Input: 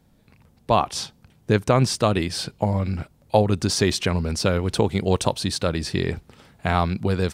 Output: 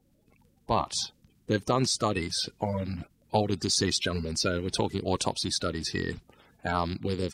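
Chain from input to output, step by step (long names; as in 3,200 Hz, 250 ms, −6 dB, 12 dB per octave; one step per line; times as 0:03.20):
spectral magnitudes quantised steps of 30 dB
dynamic equaliser 4,700 Hz, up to +8 dB, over −43 dBFS, Q 0.72
level −7.5 dB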